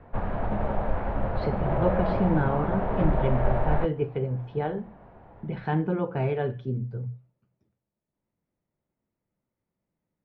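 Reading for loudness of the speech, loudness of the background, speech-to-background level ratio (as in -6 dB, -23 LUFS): -29.0 LUFS, -29.5 LUFS, 0.5 dB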